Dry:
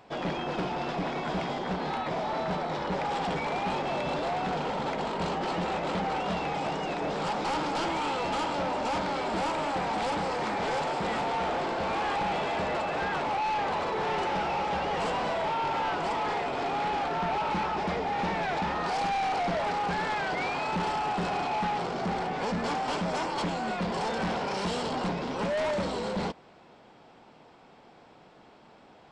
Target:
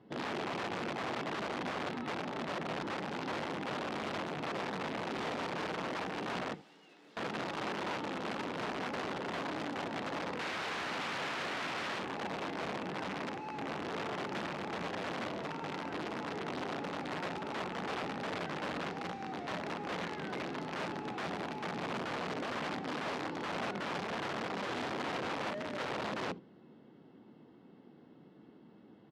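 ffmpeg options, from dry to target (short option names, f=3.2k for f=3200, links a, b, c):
-filter_complex "[0:a]asuperstop=centerf=2400:order=20:qfactor=7.8,asplit=2[a][b];[b]aeval=exprs='(mod(22.4*val(0)+1,2)-1)/22.4':c=same,volume=-11.5dB[c];[a][c]amix=inputs=2:normalize=0,firequalizer=gain_entry='entry(280,0);entry(660,-18);entry(2100,-14)':delay=0.05:min_phase=1,acrossover=split=2600[d][e];[e]alimiter=level_in=26dB:limit=-24dB:level=0:latency=1,volume=-26dB[f];[d][f]amix=inputs=2:normalize=0,asettb=1/sr,asplit=3[g][h][i];[g]atrim=end=6.544[j];[h]atrim=start=6.54:end=7.17,asetpts=PTS-STARTPTS,afade=t=in:d=0.004:c=qsin,afade=t=out:st=0.626:d=0.004:c=qsin,aderivative[k];[i]atrim=start=7.166[l];[j][k]acrossfade=d=0.004:c1=hsin:c2=qsin[m];[m][l]acrossfade=d=0.004:c1=qsin:c2=hsin,asettb=1/sr,asplit=3[n][o][p];[n]atrim=end=10.394[q];[o]atrim=start=10.39:end=11.99,asetpts=PTS-STARTPTS,afade=t=in:d=0.004:c=qsin,afade=t=out:st=1.596:d=0.004:c=qsin,acontrast=68[r];[p]atrim=start=11.986[s];[q][r]acrossfade=d=0.004:c1=hsin:c2=qsin[t];[t][s]acrossfade=d=0.004:c1=qsin:c2=hsin,flanger=delay=8.9:depth=4.8:regen=-63:speed=0.62:shape=sinusoidal,aecho=1:1:73:0.188,aeval=exprs='(mod(70.8*val(0)+1,2)-1)/70.8':c=same,highpass=160,lowpass=3.5k,volume=6dB"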